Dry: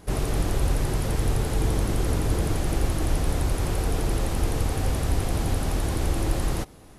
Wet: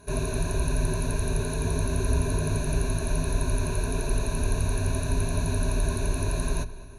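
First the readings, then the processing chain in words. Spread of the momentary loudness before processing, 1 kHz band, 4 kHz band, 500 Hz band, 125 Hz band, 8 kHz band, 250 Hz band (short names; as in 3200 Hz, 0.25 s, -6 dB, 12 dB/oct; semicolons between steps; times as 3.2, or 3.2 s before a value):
2 LU, -3.5 dB, -3.0 dB, -1.0 dB, -1.5 dB, +1.0 dB, -2.0 dB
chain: ripple EQ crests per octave 1.5, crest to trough 18 dB; on a send: darkening echo 0.216 s, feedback 55%, low-pass 4700 Hz, level -17 dB; on the sum: gain -5.5 dB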